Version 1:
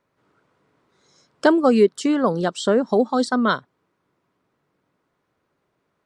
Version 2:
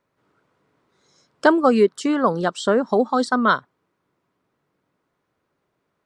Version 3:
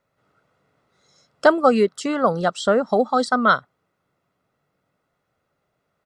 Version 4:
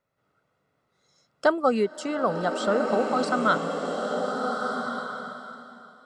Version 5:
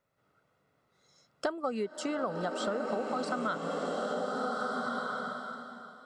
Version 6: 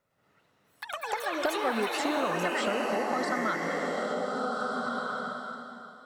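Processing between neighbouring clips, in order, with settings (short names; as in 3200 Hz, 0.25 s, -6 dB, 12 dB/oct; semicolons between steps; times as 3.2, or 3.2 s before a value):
dynamic EQ 1200 Hz, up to +6 dB, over -34 dBFS, Q 1; gain -1.5 dB
comb 1.5 ms, depth 44%
bloom reverb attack 1.47 s, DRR 2.5 dB; gain -6.5 dB
compressor 6:1, threshold -30 dBFS, peak gain reduction 14.5 dB
added harmonics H 4 -37 dB, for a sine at -17 dBFS; echoes that change speed 0.105 s, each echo +6 st, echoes 3; gain +2 dB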